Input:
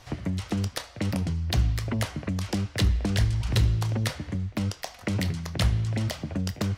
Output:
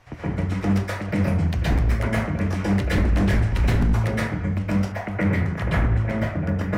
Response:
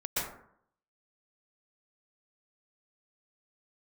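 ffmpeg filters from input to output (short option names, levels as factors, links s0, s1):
-filter_complex "[1:a]atrim=start_sample=2205[s0];[0:a][s0]afir=irnorm=-1:irlink=0,aeval=exprs='0.211*(abs(mod(val(0)/0.211+3,4)-2)-1)':c=same,asetnsamples=n=441:p=0,asendcmd='4.92 highshelf g -13.5',highshelf=f=2900:t=q:w=1.5:g=-7"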